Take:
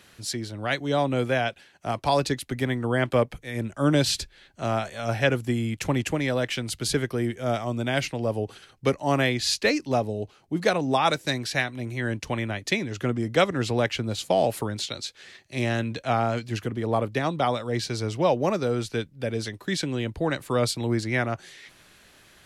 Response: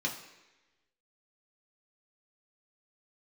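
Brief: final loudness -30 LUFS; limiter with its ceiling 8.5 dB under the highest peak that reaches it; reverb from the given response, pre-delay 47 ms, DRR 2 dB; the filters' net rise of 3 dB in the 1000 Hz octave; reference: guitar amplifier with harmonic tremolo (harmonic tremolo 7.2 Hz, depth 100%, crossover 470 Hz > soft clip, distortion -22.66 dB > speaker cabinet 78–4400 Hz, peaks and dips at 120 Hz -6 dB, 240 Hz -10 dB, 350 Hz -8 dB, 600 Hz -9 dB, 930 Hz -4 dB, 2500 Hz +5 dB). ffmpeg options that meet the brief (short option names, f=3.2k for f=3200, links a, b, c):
-filter_complex "[0:a]equalizer=f=1k:t=o:g=8.5,alimiter=limit=-12dB:level=0:latency=1,asplit=2[a][b];[1:a]atrim=start_sample=2205,adelay=47[c];[b][c]afir=irnorm=-1:irlink=0,volume=-7dB[d];[a][d]amix=inputs=2:normalize=0,acrossover=split=470[e][f];[e]aeval=exprs='val(0)*(1-1/2+1/2*cos(2*PI*7.2*n/s))':c=same[g];[f]aeval=exprs='val(0)*(1-1/2-1/2*cos(2*PI*7.2*n/s))':c=same[h];[g][h]amix=inputs=2:normalize=0,asoftclip=threshold=-15dB,highpass=78,equalizer=f=120:t=q:w=4:g=-6,equalizer=f=240:t=q:w=4:g=-10,equalizer=f=350:t=q:w=4:g=-8,equalizer=f=600:t=q:w=4:g=-9,equalizer=f=930:t=q:w=4:g=-4,equalizer=f=2.5k:t=q:w=4:g=5,lowpass=f=4.4k:w=0.5412,lowpass=f=4.4k:w=1.3066,volume=2dB"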